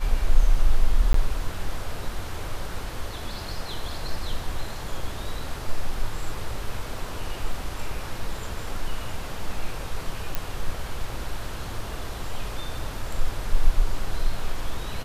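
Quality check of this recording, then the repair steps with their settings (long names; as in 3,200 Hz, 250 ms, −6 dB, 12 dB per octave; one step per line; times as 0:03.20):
0:01.13–0:01.14: drop-out 13 ms
0:10.35: click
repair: click removal
repair the gap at 0:01.13, 13 ms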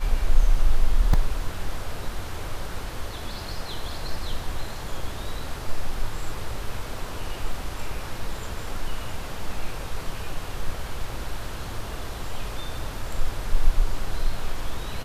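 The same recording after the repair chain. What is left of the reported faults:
none of them is left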